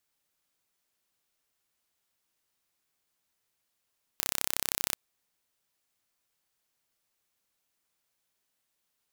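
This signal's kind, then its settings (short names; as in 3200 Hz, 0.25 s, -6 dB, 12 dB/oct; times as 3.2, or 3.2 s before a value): pulse train 32.8/s, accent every 0, -1.5 dBFS 0.74 s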